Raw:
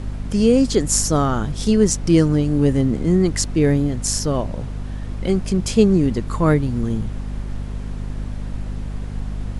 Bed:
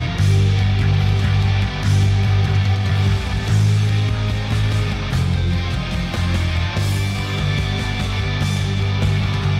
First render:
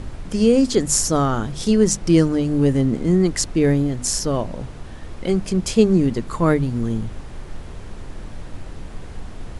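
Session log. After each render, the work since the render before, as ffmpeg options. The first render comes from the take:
-af "bandreject=f=50:t=h:w=6,bandreject=f=100:t=h:w=6,bandreject=f=150:t=h:w=6,bandreject=f=200:t=h:w=6,bandreject=f=250:t=h:w=6"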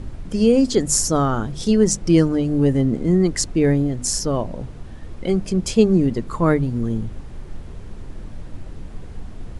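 -af "afftdn=nr=6:nf=-36"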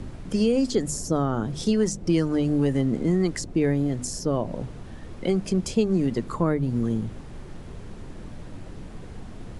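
-filter_complex "[0:a]acrossover=split=100|750[a][b][c];[a]acompressor=threshold=-38dB:ratio=4[d];[b]acompressor=threshold=-20dB:ratio=4[e];[c]acompressor=threshold=-33dB:ratio=4[f];[d][e][f]amix=inputs=3:normalize=0"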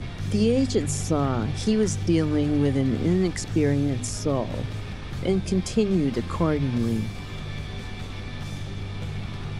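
-filter_complex "[1:a]volume=-15dB[a];[0:a][a]amix=inputs=2:normalize=0"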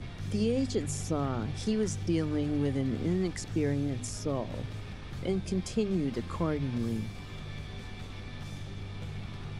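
-af "volume=-7.5dB"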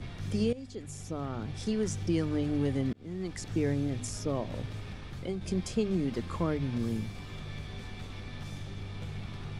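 -filter_complex "[0:a]asplit=4[a][b][c][d];[a]atrim=end=0.53,asetpts=PTS-STARTPTS,afade=t=out:st=0.526:d=0.004:c=hsin:silence=0.149624[e];[b]atrim=start=0.53:end=2.93,asetpts=PTS-STARTPTS,afade=t=in:d=1.47:silence=0.149624,afade=t=out:st=2.396:d=0.004:c=hsin[f];[c]atrim=start=2.93:end=5.41,asetpts=PTS-STARTPTS,afade=t=in:d=0.59,afade=t=out:st=2.06:d=0.42:silence=0.473151[g];[d]atrim=start=5.41,asetpts=PTS-STARTPTS,afade=t=in:d=0.004:c=hsin:silence=0.473151[h];[e][f][g][h]concat=n=4:v=0:a=1"

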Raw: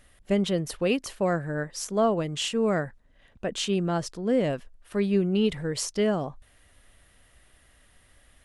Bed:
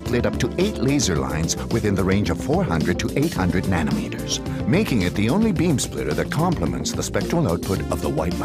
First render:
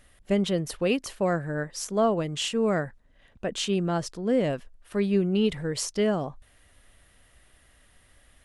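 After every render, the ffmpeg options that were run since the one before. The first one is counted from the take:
-af anull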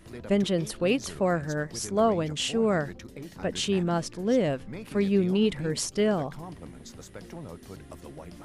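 -filter_complex "[1:a]volume=-21dB[a];[0:a][a]amix=inputs=2:normalize=0"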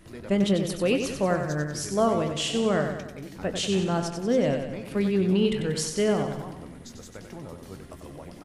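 -filter_complex "[0:a]asplit=2[a][b];[b]adelay=21,volume=-12.5dB[c];[a][c]amix=inputs=2:normalize=0,asplit=2[d][e];[e]aecho=0:1:94|188|282|376|470|564:0.447|0.232|0.121|0.0628|0.0327|0.017[f];[d][f]amix=inputs=2:normalize=0"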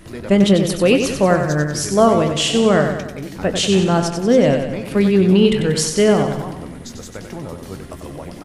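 -af "volume=10dB"

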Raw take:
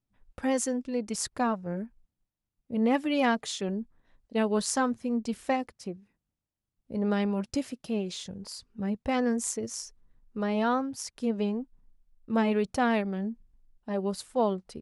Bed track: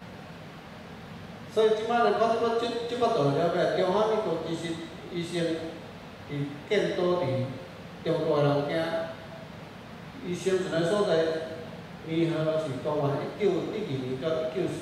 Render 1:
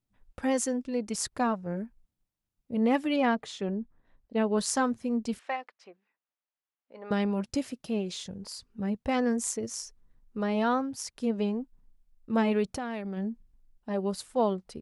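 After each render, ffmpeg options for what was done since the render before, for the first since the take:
-filter_complex "[0:a]asettb=1/sr,asplit=3[a][b][c];[a]atrim=end=3.164[d];[b]atrim=start=3.16:end=4.58,asetpts=PTS-STARTPTS,afade=t=in:d=0.004:c=qsin,afade=t=out:st=1.416:d=0.004:c=qsin,lowpass=f=2.2k:p=1[e];[c]atrim=start=4.576[f];[d][e]acrossfade=d=0.004:c1=hsin:c2=qsin[g];[g][f]acrossfade=d=0.004:c1=qsin:c2=hsin,asettb=1/sr,asplit=3[h][i][j];[h]atrim=end=5.394[k];[i]atrim=start=5.39:end=7.11,asetpts=PTS-STARTPTS,afade=t=in:d=0.004:c=qsin,afade=t=out:st=1.716:d=0.004:c=qsin,highpass=800,lowpass=2.9k[l];[j]atrim=start=7.106[m];[k][l]acrossfade=d=0.004:c1=hsin:c2=qsin[n];[n][m]acrossfade=d=0.004:c1=qsin:c2=hsin,asplit=3[o][p][q];[o]afade=t=out:st=12.74:d=0.02[r];[p]acompressor=threshold=-31dB:ratio=4:attack=3.2:release=140:knee=1:detection=peak,afade=t=in:st=12.74:d=0.02,afade=t=out:st=13.16:d=0.02[s];[q]afade=t=in:st=13.16:d=0.02[t];[r][s][t]amix=inputs=3:normalize=0"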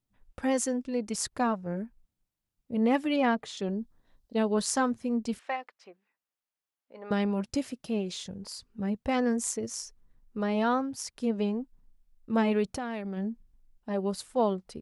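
-filter_complex "[0:a]asettb=1/sr,asplit=3[a][b][c];[a]atrim=end=3.574[d];[b]atrim=start=3.57:end=4.54,asetpts=PTS-STARTPTS,afade=t=in:d=0.004:c=qsin,afade=t=out:st=0.966:d=0.004:c=qsin,highshelf=f=3.1k:t=q:w=1.5:g=6.5[e];[c]atrim=start=4.536[f];[d][e]acrossfade=d=0.004:c1=hsin:c2=qsin[g];[g][f]acrossfade=d=0.004:c1=qsin:c2=hsin"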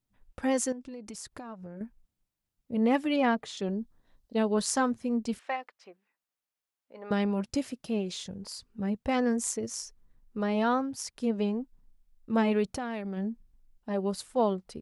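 -filter_complex "[0:a]asettb=1/sr,asplit=3[a][b][c];[a]atrim=end=0.724[d];[b]atrim=start=0.72:end=1.81,asetpts=PTS-STARTPTS,afade=t=in:d=0.004:c=qsin,afade=t=out:st=1.086:d=0.004:c=qsin,acompressor=threshold=-38dB:ratio=12:attack=3.2:release=140:knee=1:detection=peak[e];[c]atrim=start=1.806[f];[d][e]acrossfade=d=0.004:c1=hsin:c2=qsin[g];[g][f]acrossfade=d=0.004:c1=qsin:c2=hsin"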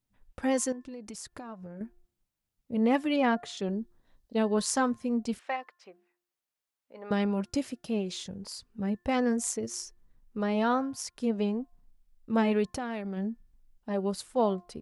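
-af "bandreject=f=352.5:t=h:w=4,bandreject=f=705:t=h:w=4,bandreject=f=1.0575k:t=h:w=4,bandreject=f=1.41k:t=h:w=4,bandreject=f=1.7625k:t=h:w=4"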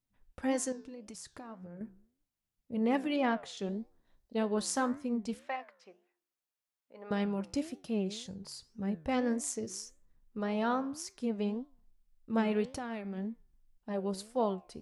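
-af "flanger=delay=9.9:depth=6.3:regen=84:speed=1.8:shape=triangular"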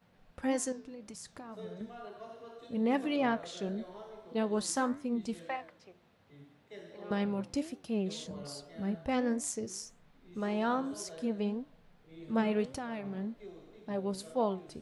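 -filter_complex "[1:a]volume=-23.5dB[a];[0:a][a]amix=inputs=2:normalize=0"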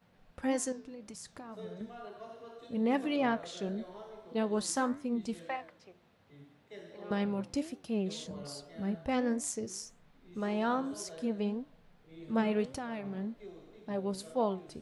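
-af anull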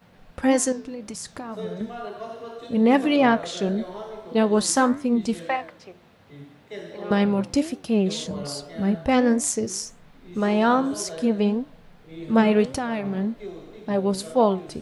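-af "volume=12dB"

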